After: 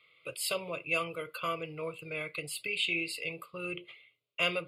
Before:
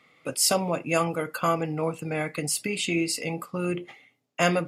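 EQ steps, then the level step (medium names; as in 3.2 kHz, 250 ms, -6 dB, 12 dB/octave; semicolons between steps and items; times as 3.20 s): high-order bell 3.1 kHz +9.5 dB; static phaser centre 1.2 kHz, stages 8; -8.5 dB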